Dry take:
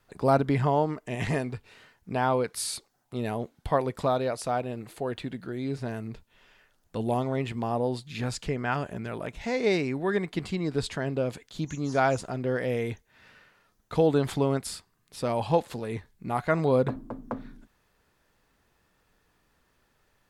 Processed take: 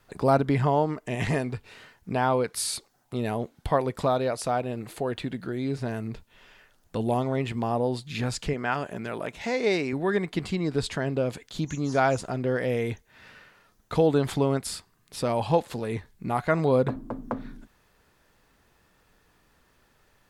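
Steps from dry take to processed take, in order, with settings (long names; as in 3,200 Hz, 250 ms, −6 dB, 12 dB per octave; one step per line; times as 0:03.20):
0:08.53–0:09.93: high-pass filter 230 Hz 6 dB per octave
in parallel at −2 dB: downward compressor, threshold −36 dBFS, peak gain reduction 18 dB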